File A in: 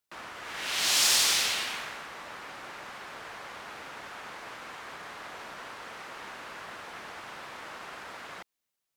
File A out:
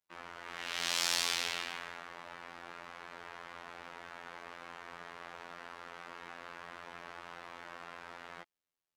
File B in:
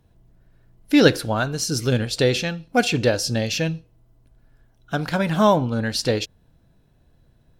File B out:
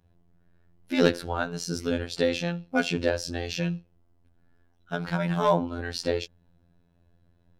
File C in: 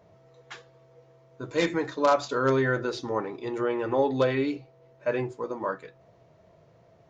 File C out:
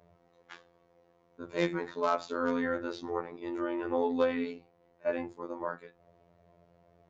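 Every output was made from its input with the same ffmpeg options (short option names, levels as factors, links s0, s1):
-af "aemphasis=mode=reproduction:type=cd,asoftclip=type=hard:threshold=0.398,afftfilt=real='hypot(re,im)*cos(PI*b)':imag='0':win_size=2048:overlap=0.75,volume=0.794"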